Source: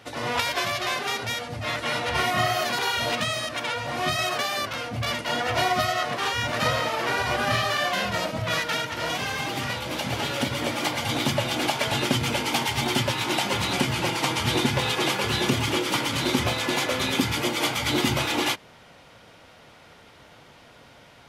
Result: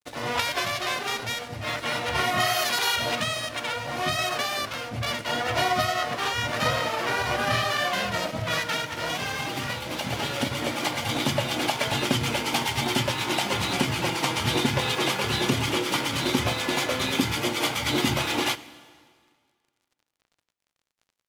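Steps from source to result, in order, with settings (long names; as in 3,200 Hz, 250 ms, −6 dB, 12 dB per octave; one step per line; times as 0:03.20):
0:02.40–0:02.96: spectral tilt +2 dB per octave
dead-zone distortion −42.5 dBFS
dense smooth reverb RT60 1.9 s, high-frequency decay 0.9×, DRR 16 dB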